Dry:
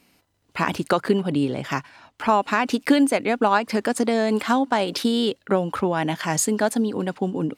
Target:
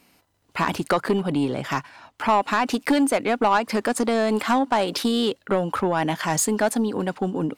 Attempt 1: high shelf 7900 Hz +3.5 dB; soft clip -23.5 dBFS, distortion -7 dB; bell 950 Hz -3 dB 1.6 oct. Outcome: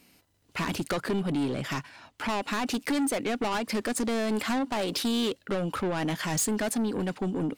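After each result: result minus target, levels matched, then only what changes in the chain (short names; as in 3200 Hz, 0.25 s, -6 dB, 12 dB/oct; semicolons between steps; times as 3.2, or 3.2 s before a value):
soft clip: distortion +8 dB; 1000 Hz band -4.0 dB
change: soft clip -14 dBFS, distortion -14 dB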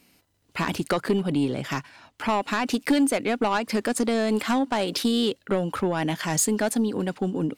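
1000 Hz band -3.5 dB
change: bell 950 Hz +3.5 dB 1.6 oct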